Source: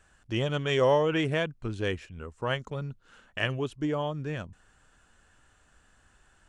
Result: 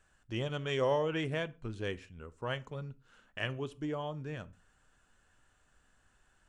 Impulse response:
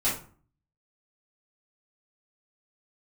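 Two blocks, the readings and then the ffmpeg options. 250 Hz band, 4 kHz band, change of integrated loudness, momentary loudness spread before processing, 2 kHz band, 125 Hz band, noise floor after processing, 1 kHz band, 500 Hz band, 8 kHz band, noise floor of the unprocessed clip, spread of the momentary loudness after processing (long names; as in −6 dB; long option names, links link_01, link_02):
−7.5 dB, −7.0 dB, −7.0 dB, 15 LU, −7.0 dB, −7.0 dB, −71 dBFS, −7.0 dB, −7.0 dB, −7.0 dB, −64 dBFS, 15 LU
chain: -filter_complex "[0:a]asplit=2[link_01][link_02];[1:a]atrim=start_sample=2205,afade=type=out:start_time=0.21:duration=0.01,atrim=end_sample=9702[link_03];[link_02][link_03]afir=irnorm=-1:irlink=0,volume=-24.5dB[link_04];[link_01][link_04]amix=inputs=2:normalize=0,volume=-7.5dB"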